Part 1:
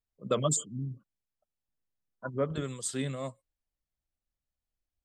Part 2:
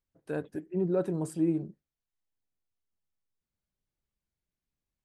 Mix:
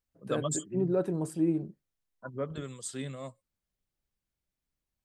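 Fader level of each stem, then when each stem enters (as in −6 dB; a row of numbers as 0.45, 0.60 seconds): −4.5, 0.0 decibels; 0.00, 0.00 seconds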